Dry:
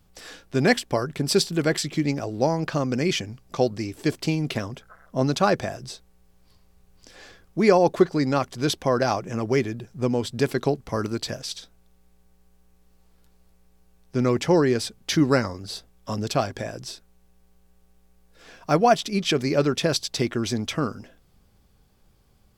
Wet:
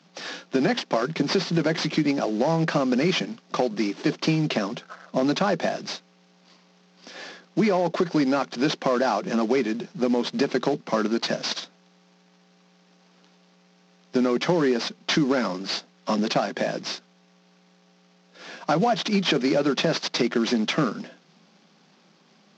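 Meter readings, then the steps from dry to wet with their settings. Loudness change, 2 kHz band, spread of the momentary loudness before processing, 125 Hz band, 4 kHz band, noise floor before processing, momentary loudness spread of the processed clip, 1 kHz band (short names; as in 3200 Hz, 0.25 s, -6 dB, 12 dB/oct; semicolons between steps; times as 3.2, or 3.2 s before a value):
-0.5 dB, +1.0 dB, 15 LU, -3.5 dB, +1.5 dB, -61 dBFS, 10 LU, -0.5 dB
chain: CVSD 32 kbps; Chebyshev high-pass 160 Hz, order 6; notch 450 Hz, Q 12; limiter -16 dBFS, peak gain reduction 10 dB; compressor 3:1, threshold -28 dBFS, peak gain reduction 6.5 dB; gain +8.5 dB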